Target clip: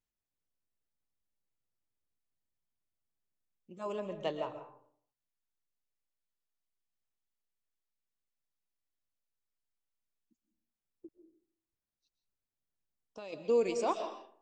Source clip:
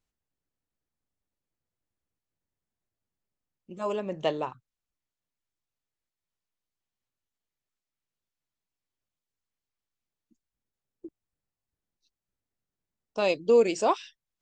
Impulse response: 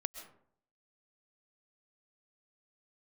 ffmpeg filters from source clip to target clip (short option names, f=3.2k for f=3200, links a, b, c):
-filter_complex "[0:a]asplit=3[a][b][c];[a]afade=t=out:st=11.06:d=0.02[d];[b]acompressor=threshold=-42dB:ratio=2.5,afade=t=in:st=11.06:d=0.02,afade=t=out:st=13.32:d=0.02[e];[c]afade=t=in:st=13.32:d=0.02[f];[d][e][f]amix=inputs=3:normalize=0[g];[1:a]atrim=start_sample=2205[h];[g][h]afir=irnorm=-1:irlink=0,volume=-7dB"